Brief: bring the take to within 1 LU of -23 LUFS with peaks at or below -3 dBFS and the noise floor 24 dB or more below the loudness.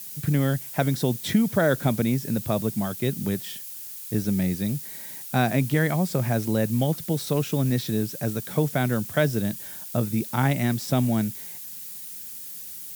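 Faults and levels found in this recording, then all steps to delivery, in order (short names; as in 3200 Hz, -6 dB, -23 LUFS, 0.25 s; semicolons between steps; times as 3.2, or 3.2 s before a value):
noise floor -38 dBFS; noise floor target -50 dBFS; loudness -25.5 LUFS; peak -7.0 dBFS; loudness target -23.0 LUFS
-> noise print and reduce 12 dB; gain +2.5 dB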